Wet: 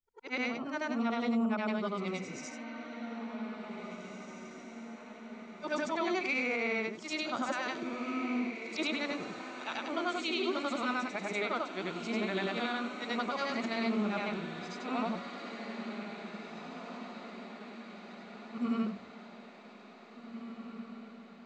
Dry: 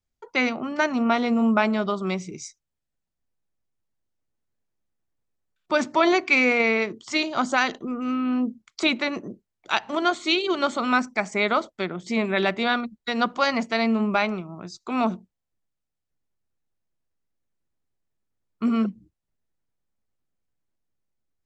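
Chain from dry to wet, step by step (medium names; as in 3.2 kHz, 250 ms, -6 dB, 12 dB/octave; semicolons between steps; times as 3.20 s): short-time spectra conjugated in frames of 209 ms; peak limiter -18 dBFS, peak gain reduction 8.5 dB; echo that smears into a reverb 1994 ms, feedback 54%, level -9 dB; trim -5.5 dB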